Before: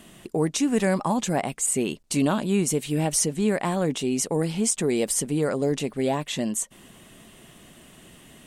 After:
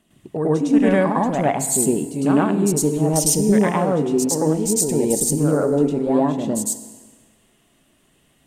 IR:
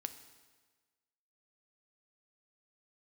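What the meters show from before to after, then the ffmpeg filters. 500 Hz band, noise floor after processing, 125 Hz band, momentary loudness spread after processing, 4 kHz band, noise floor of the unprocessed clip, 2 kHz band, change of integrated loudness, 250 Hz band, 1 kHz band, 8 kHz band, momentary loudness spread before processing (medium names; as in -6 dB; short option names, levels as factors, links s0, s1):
+6.5 dB, -60 dBFS, +6.0 dB, 6 LU, -0.5 dB, -51 dBFS, +3.0 dB, +6.0 dB, +7.0 dB, +6.5 dB, +5.0 dB, 4 LU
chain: -filter_complex "[0:a]afwtdn=0.0224,aphaser=in_gain=1:out_gain=1:delay=3.7:decay=0.25:speed=0.58:type=triangular,asplit=2[s0][s1];[1:a]atrim=start_sample=2205,adelay=105[s2];[s1][s2]afir=irnorm=-1:irlink=0,volume=2.24[s3];[s0][s3]amix=inputs=2:normalize=0"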